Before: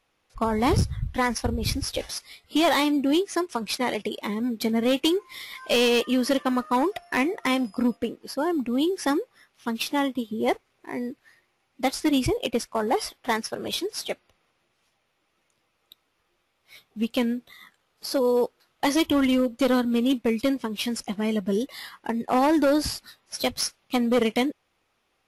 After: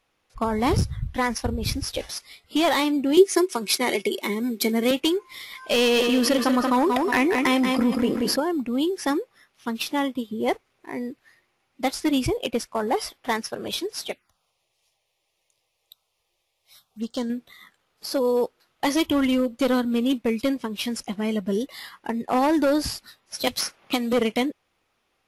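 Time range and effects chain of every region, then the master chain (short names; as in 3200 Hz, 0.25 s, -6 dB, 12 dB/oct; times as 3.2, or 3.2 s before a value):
3.17–4.91 HPF 140 Hz 24 dB/oct + high shelf 4100 Hz +11 dB + small resonant body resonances 380/2200 Hz, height 14 dB, ringing for 90 ms
5.78–8.4 feedback echo 0.182 s, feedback 35%, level -9.5 dB + fast leveller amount 70%
14.11–17.3 tilt shelf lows -4 dB, about 1300 Hz + envelope phaser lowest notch 240 Hz, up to 2500 Hz, full sweep at -30.5 dBFS
23.47–24.13 low shelf 140 Hz -9 dB + three-band squash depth 100%
whole clip: dry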